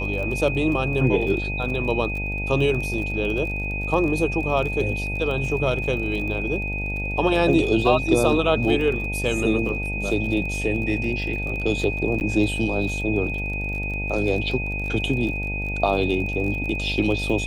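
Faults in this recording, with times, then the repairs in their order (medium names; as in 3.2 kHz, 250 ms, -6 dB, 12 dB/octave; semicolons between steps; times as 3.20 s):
buzz 50 Hz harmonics 18 -29 dBFS
crackle 30 per s -30 dBFS
whine 2.5 kHz -28 dBFS
12.20–12.21 s: dropout 9.4 ms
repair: de-click; de-hum 50 Hz, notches 18; band-stop 2.5 kHz, Q 30; interpolate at 12.20 s, 9.4 ms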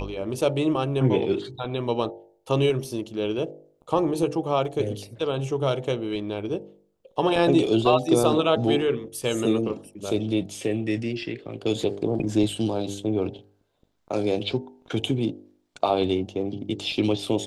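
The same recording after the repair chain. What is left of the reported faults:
nothing left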